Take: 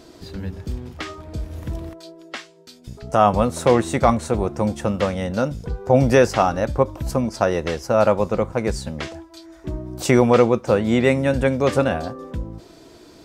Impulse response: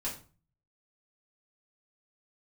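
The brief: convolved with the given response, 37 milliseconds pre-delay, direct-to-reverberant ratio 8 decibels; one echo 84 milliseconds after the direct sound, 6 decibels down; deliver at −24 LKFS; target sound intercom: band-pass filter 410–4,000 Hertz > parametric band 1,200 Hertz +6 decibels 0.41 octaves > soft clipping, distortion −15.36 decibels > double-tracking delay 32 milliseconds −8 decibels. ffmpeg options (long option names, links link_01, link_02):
-filter_complex "[0:a]aecho=1:1:84:0.501,asplit=2[link_01][link_02];[1:a]atrim=start_sample=2205,adelay=37[link_03];[link_02][link_03]afir=irnorm=-1:irlink=0,volume=-10.5dB[link_04];[link_01][link_04]amix=inputs=2:normalize=0,highpass=410,lowpass=4000,equalizer=frequency=1200:width_type=o:width=0.41:gain=6,asoftclip=threshold=-8.5dB,asplit=2[link_05][link_06];[link_06]adelay=32,volume=-8dB[link_07];[link_05][link_07]amix=inputs=2:normalize=0,volume=-3dB"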